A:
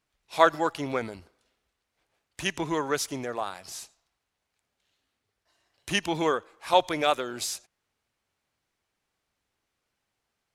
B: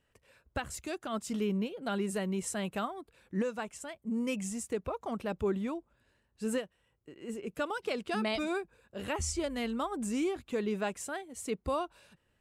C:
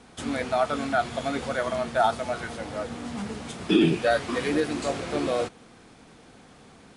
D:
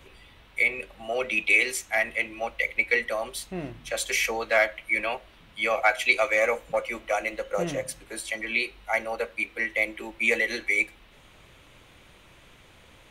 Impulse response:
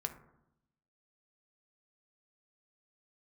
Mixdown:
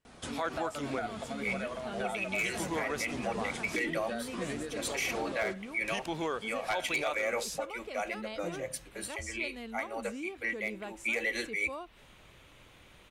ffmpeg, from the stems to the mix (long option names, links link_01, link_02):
-filter_complex "[0:a]volume=-7dB[link_01];[1:a]volume=-9dB,asplit=2[link_02][link_03];[2:a]acompressor=threshold=-34dB:ratio=6,flanger=delay=1.4:depth=2:regen=68:speed=0.66:shape=triangular,adelay=50,volume=2.5dB[link_04];[3:a]aeval=exprs='0.237*(abs(mod(val(0)/0.237+3,4)-2)-1)':channel_layout=same,adelay=850,volume=-3.5dB[link_05];[link_03]apad=whole_len=615456[link_06];[link_05][link_06]sidechaincompress=threshold=-45dB:ratio=8:attack=16:release=249[link_07];[link_01][link_02][link_04][link_07]amix=inputs=4:normalize=0,alimiter=limit=-22.5dB:level=0:latency=1:release=53"